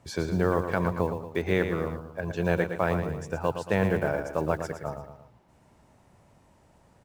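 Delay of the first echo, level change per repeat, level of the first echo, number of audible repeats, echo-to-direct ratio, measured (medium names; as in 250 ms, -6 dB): 114 ms, -6.5 dB, -8.0 dB, 3, -7.0 dB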